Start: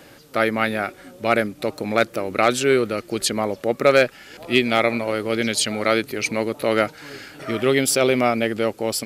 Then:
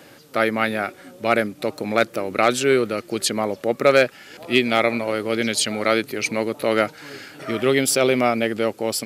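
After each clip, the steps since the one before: HPF 99 Hz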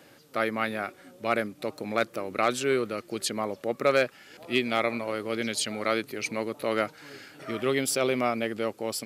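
dynamic EQ 1100 Hz, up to +5 dB, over -40 dBFS, Q 5.2; gain -8 dB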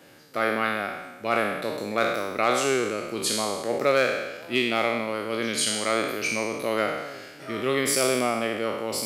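spectral trails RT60 1.14 s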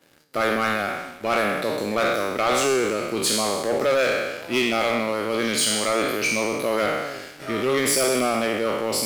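sample leveller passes 3; gain -5.5 dB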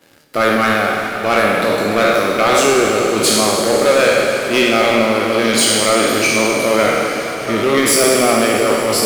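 plate-style reverb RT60 4.8 s, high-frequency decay 0.95×, DRR 2.5 dB; gain +7 dB

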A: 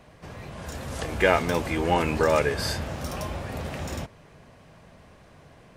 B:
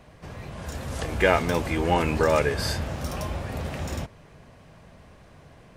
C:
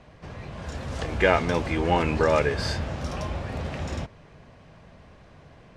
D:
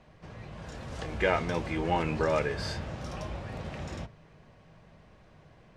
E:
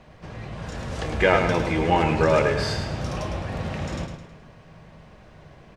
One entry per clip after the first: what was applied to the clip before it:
low shelf 110 Hz +4.5 dB
LPF 6000 Hz 12 dB/oct
reverb RT60 0.20 s, pre-delay 5 ms, DRR 12 dB; gain -6.5 dB
feedback echo 0.106 s, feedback 42%, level -7 dB; gain +7.5 dB

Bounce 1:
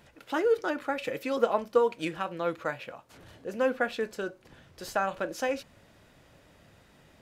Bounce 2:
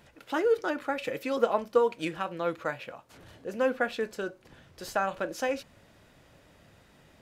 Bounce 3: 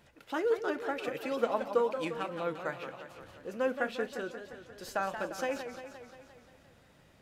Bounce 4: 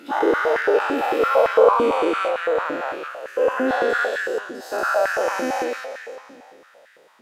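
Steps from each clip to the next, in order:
nothing audible
warbling echo 0.175 s, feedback 62%, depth 192 cents, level -9 dB; gain -4.5 dB
spectral dilation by 0.48 s; stepped high-pass 8.9 Hz 270–1700 Hz

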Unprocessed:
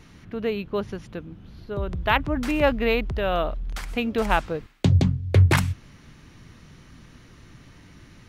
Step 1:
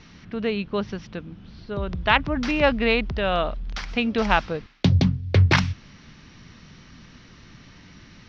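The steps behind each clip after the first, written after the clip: EQ curve 130 Hz 0 dB, 200 Hz +5 dB, 320 Hz 0 dB, 5700 Hz +7 dB, 8500 Hz -25 dB; gain -1 dB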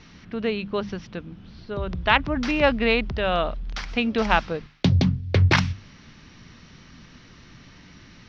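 notches 50/100/150/200 Hz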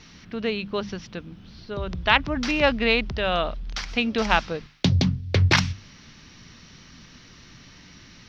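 high shelf 4100 Hz +10.5 dB; gain -1.5 dB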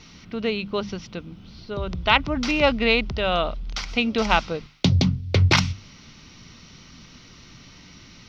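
notch 1700 Hz, Q 6; gain +1.5 dB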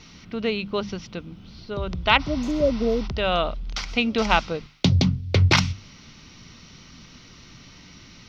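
spectral repair 2.22–3.05, 710–6100 Hz after

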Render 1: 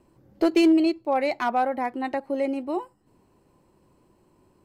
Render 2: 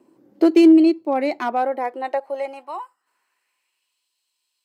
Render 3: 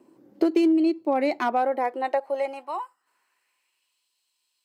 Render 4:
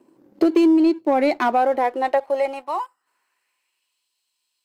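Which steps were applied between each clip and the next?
high-pass sweep 280 Hz -> 3600 Hz, 1.38–4.07
compressor 6:1, threshold -18 dBFS, peak gain reduction 9.5 dB
sample leveller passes 1; gain +2 dB

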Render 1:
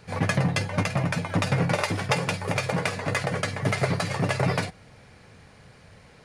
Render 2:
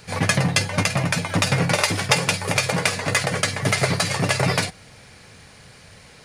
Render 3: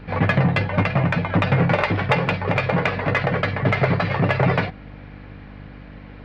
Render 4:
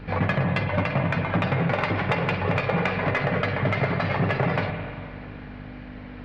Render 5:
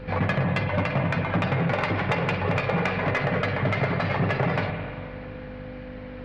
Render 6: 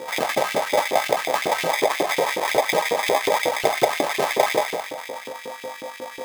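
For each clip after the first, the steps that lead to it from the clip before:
high shelf 2600 Hz +11 dB; gain +2.5 dB
Gaussian blur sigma 3.3 samples; buzz 50 Hz, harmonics 6, -45 dBFS -3 dB/oct; in parallel at -3.5 dB: soft clip -19 dBFS, distortion -12 dB
compressor 2.5:1, threshold -23 dBFS, peak gain reduction 7 dB; spring tank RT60 2.3 s, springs 43/48 ms, chirp 20 ms, DRR 5 dB
whine 510 Hz -41 dBFS; soft clip -12.5 dBFS, distortion -25 dB
bell 620 Hz +3 dB; sample-and-hold 31×; LFO high-pass saw up 5.5 Hz 330–3000 Hz; gain +3.5 dB

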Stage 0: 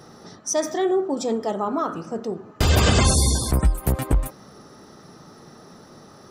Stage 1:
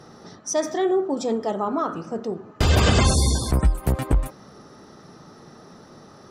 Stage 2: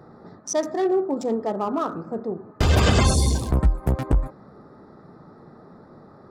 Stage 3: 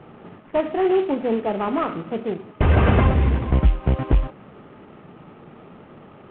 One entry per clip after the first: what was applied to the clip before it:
high shelf 10000 Hz -11 dB
Wiener smoothing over 15 samples
CVSD 16 kbps; gain +3 dB

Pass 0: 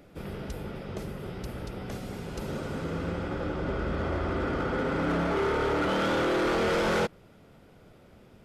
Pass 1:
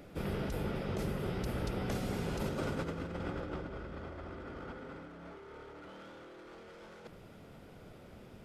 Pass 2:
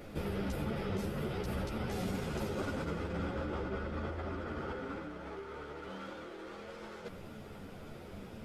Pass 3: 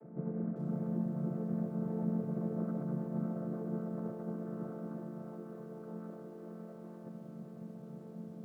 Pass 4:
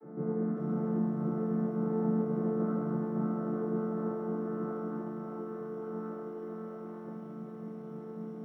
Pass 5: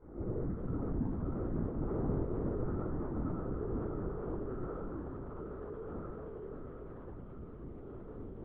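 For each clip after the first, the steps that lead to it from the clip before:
negative-ratio compressor -35 dBFS, ratio -0.5; gain -4 dB
limiter -34 dBFS, peak gain reduction 10.5 dB; ensemble effect; gain +8.5 dB
chord vocoder minor triad, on D3; Gaussian blur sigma 6.4 samples; lo-fi delay 0.55 s, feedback 35%, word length 11-bit, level -8.5 dB
reverb RT60 0.60 s, pre-delay 3 ms, DRR -6.5 dB; gain -5.5 dB
LPC vocoder at 8 kHz whisper; gain -4 dB

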